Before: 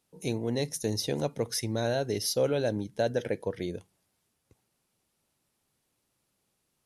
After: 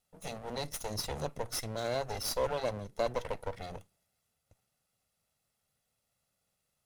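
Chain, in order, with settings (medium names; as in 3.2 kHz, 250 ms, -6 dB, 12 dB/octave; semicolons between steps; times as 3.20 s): comb filter that takes the minimum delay 1.5 ms; trim -2.5 dB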